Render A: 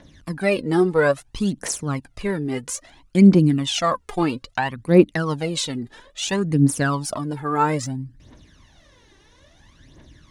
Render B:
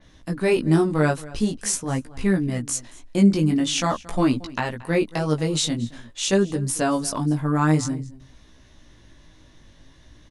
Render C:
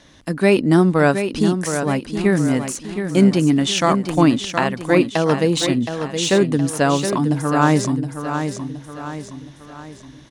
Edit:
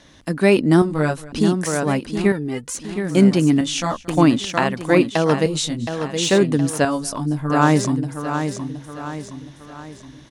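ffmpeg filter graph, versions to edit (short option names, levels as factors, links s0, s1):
-filter_complex "[1:a]asplit=4[s0][s1][s2][s3];[2:a]asplit=6[s4][s5][s6][s7][s8][s9];[s4]atrim=end=0.822[s10];[s0]atrim=start=0.818:end=1.322[s11];[s5]atrim=start=1.318:end=2.322[s12];[0:a]atrim=start=2.318:end=2.752[s13];[s6]atrim=start=2.748:end=3.612[s14];[s1]atrim=start=3.608:end=4.082[s15];[s7]atrim=start=4.078:end=5.462[s16];[s2]atrim=start=5.458:end=5.872[s17];[s8]atrim=start=5.868:end=6.852[s18];[s3]atrim=start=6.848:end=7.502[s19];[s9]atrim=start=7.498[s20];[s10][s11]acrossfade=d=0.004:c1=hsin:c2=hsin[s21];[s21][s12]acrossfade=d=0.004:c1=hsin:c2=hsin[s22];[s22][s13]acrossfade=d=0.004:c1=hsin:c2=hsin[s23];[s23][s14]acrossfade=d=0.004:c1=hsin:c2=hsin[s24];[s24][s15]acrossfade=d=0.004:c1=hsin:c2=hsin[s25];[s25][s16]acrossfade=d=0.004:c1=hsin:c2=hsin[s26];[s26][s17]acrossfade=d=0.004:c1=hsin:c2=hsin[s27];[s27][s18]acrossfade=d=0.004:c1=hsin:c2=hsin[s28];[s28][s19]acrossfade=d=0.004:c1=hsin:c2=hsin[s29];[s29][s20]acrossfade=d=0.004:c1=hsin:c2=hsin"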